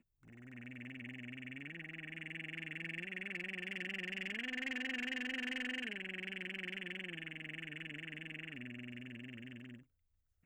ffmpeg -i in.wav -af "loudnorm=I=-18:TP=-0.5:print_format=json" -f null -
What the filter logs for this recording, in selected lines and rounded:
"input_i" : "-43.7",
"input_tp" : "-30.5",
"input_lra" : "8.4",
"input_thresh" : "-54.0",